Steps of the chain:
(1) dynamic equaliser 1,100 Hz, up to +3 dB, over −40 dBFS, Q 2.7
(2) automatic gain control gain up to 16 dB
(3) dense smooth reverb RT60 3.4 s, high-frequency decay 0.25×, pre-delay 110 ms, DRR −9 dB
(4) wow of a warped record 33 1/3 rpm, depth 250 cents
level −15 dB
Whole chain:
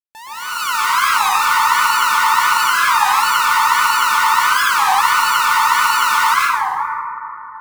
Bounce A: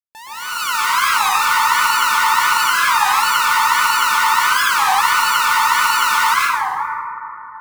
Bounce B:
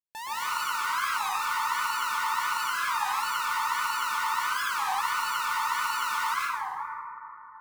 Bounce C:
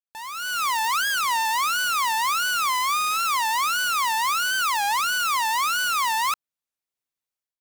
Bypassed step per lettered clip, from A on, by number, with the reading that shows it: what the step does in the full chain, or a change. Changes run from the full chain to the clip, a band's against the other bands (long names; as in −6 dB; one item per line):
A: 1, 1 kHz band −2.0 dB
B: 2, change in integrated loudness −14.5 LU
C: 3, change in momentary loudness spread −7 LU